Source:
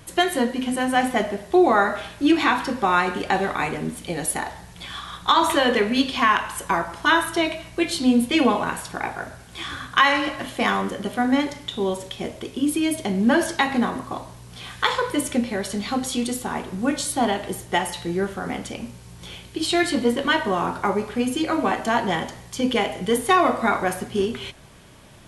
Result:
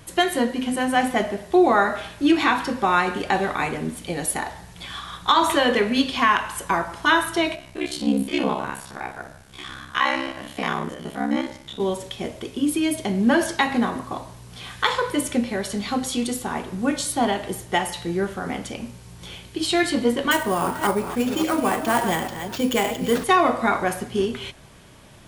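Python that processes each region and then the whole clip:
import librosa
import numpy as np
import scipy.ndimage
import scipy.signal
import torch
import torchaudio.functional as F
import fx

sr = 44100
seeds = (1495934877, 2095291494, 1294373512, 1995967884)

y = fx.chain(x, sr, fx.spec_steps(hold_ms=50),
    fx.ring_mod(carrier_hz=33.0), at=(7.55, 11.8))
y = fx.chain(y, sr, fx.reverse_delay(ms=281, wet_db=-8.5),
    fx.sample_hold(seeds[0], rate_hz=10000.0, jitter_pct=0), at=(20.31, 23.24))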